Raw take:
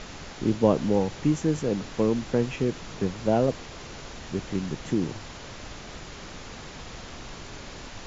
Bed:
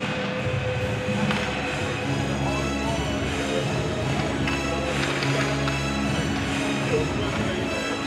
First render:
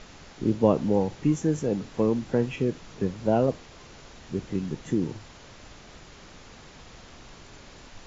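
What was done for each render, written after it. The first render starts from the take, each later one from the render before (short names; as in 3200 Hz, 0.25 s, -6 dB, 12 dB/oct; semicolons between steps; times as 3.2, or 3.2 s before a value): noise print and reduce 7 dB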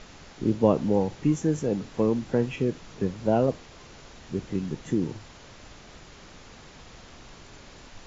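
nothing audible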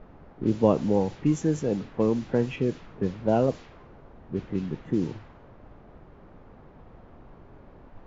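low-pass opened by the level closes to 790 Hz, open at -19 dBFS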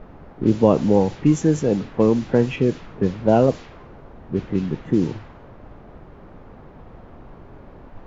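gain +7 dB; limiter -2 dBFS, peak gain reduction 2.5 dB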